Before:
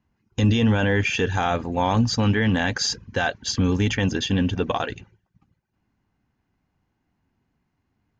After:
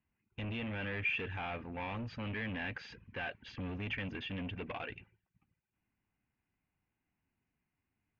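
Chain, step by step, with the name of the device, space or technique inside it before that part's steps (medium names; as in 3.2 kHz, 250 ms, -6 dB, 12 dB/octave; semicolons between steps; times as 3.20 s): overdriven synthesiser ladder filter (saturation -23 dBFS, distortion -9 dB; four-pole ladder low-pass 2.8 kHz, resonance 60%); trim -3.5 dB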